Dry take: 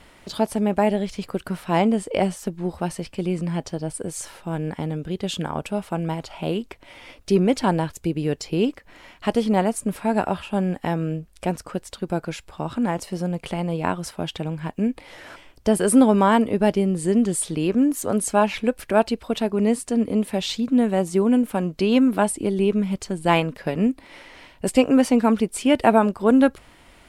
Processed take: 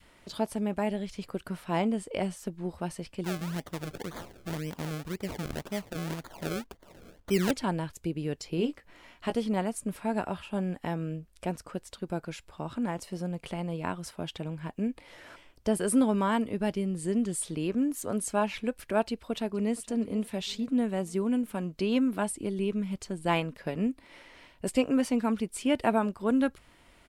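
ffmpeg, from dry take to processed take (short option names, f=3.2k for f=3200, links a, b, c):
-filter_complex "[0:a]asettb=1/sr,asplit=3[a][b][c];[a]atrim=end=3.244[d];[b]atrim=start=3.24:end=7.51,asetpts=PTS-STARTPTS,afade=t=in:d=0.004:c=qsin,afade=t=out:st=4.266:d=0.004:c=qsin,acrusher=samples=32:mix=1:aa=0.000001:lfo=1:lforange=32:lforate=1.9[e];[c]atrim=start=7.506[f];[d][e]acrossfade=d=0.004:c1=hsin:c2=qsin[g];[g][f]acrossfade=d=0.004:c1=qsin:c2=hsin,asettb=1/sr,asplit=3[h][i][j];[h]atrim=end=8.564[k];[i]atrim=start=8.56:end=9.34,asetpts=PTS-STARTPTS,afade=t=in:d=0.004:c=qsin,afade=t=out:st=0.776:d=0.004:c=qsin,asplit=2[l][m];[m]adelay=17,volume=-7.5dB[n];[l][n]amix=inputs=2:normalize=0,atrim=end_sample=34398[o];[j]atrim=start=9.336[p];[k][o]acrossfade=d=0.004:c1=hsin:c2=qsin[q];[q][p]acrossfade=d=0.004:c1=qsin:c2=hsin,asplit=2[r][s];[s]afade=t=in:st=19.07:d=0.01,afade=t=out:st=19.76:d=0.01,aecho=0:1:470|940|1410|1880:0.125893|0.0629463|0.0314731|0.0157366[t];[r][t]amix=inputs=2:normalize=0,bandreject=f=790:w=18,adynamicequalizer=threshold=0.0316:dfrequency=550:dqfactor=0.72:tfrequency=550:tqfactor=0.72:attack=5:release=100:ratio=0.375:range=2.5:mode=cutabove:tftype=bell,volume=-8dB"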